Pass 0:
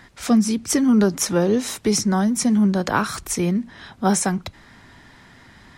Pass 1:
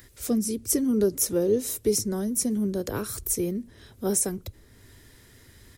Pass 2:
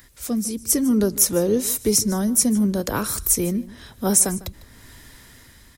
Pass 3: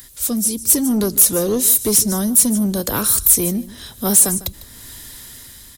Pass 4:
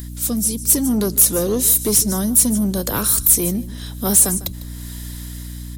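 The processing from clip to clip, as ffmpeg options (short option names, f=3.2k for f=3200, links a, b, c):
-filter_complex "[0:a]firequalizer=gain_entry='entry(110,0);entry(160,-12);entry(430,0);entry(770,-18);entry(13000,9)':delay=0.05:min_phase=1,acrossover=split=1200[a][b];[b]acompressor=mode=upward:threshold=-49dB:ratio=2.5[c];[a][c]amix=inputs=2:normalize=0"
-af "dynaudnorm=f=280:g=5:m=7dB,equalizer=f=100:t=o:w=0.67:g=-7,equalizer=f=400:t=o:w=0.67:g=-8,equalizer=f=1k:t=o:w=0.67:g=3,aecho=1:1:151:0.112,volume=2dB"
-af "asoftclip=type=tanh:threshold=-15dB,aexciter=amount=1.1:drive=9.8:freq=3.1k,volume=3dB"
-af "aeval=exprs='val(0)+0.0355*(sin(2*PI*60*n/s)+sin(2*PI*2*60*n/s)/2+sin(2*PI*3*60*n/s)/3+sin(2*PI*4*60*n/s)/4+sin(2*PI*5*60*n/s)/5)':c=same,volume=-1dB"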